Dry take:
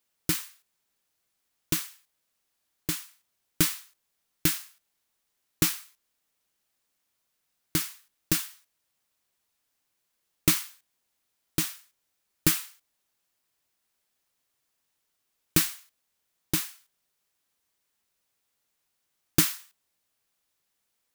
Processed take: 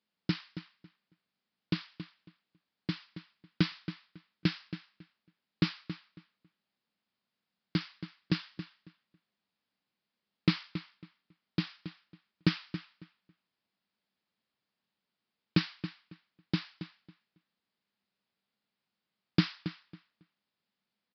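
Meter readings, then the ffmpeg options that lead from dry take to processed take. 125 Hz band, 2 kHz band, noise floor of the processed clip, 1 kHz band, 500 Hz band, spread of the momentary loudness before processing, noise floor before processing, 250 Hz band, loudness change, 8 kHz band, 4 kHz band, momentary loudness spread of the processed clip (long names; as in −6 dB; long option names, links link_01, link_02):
+1.0 dB, −4.5 dB, below −85 dBFS, −4.5 dB, −3.0 dB, 16 LU, −78 dBFS, +0.5 dB, −8.0 dB, below −30 dB, −5.5 dB, 17 LU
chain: -filter_complex "[0:a]highpass=91,equalizer=frequency=200:width=2.5:gain=13,asplit=2[link_01][link_02];[link_02]adelay=275,lowpass=frequency=4100:poles=1,volume=-11.5dB,asplit=2[link_03][link_04];[link_04]adelay=275,lowpass=frequency=4100:poles=1,volume=0.2,asplit=2[link_05][link_06];[link_06]adelay=275,lowpass=frequency=4100:poles=1,volume=0.2[link_07];[link_03][link_05][link_07]amix=inputs=3:normalize=0[link_08];[link_01][link_08]amix=inputs=2:normalize=0,aresample=11025,aresample=44100,volume=-5dB"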